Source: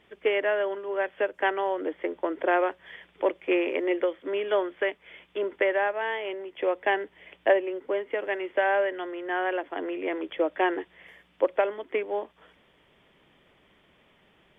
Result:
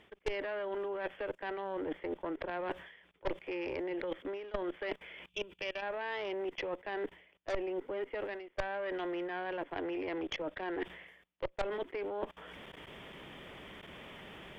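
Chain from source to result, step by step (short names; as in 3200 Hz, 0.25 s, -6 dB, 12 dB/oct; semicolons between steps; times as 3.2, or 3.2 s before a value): spectral gain 5.29–5.82, 210–2300 Hz -17 dB; level quantiser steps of 21 dB; added harmonics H 8 -16 dB, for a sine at -12 dBFS; reverse; compressor 12:1, threshold -47 dBFS, peak gain reduction 28 dB; reverse; gain +13 dB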